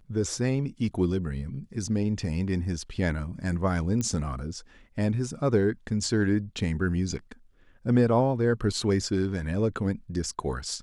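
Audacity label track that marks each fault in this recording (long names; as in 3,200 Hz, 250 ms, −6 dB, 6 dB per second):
4.010000	4.010000	click −17 dBFS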